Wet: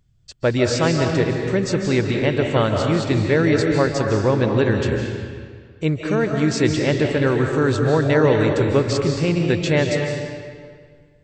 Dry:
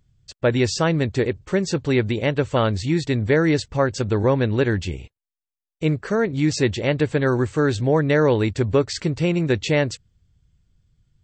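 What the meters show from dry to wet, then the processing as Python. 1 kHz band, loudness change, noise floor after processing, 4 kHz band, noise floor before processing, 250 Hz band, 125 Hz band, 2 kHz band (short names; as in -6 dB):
+2.0 dB, +2.0 dB, -51 dBFS, +2.0 dB, under -85 dBFS, +2.0 dB, +2.0 dB, +2.0 dB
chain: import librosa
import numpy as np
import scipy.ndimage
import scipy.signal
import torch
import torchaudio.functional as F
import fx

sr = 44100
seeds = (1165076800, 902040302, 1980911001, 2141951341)

y = fx.rev_freeverb(x, sr, rt60_s=1.9, hf_ratio=0.8, predelay_ms=115, drr_db=2.0)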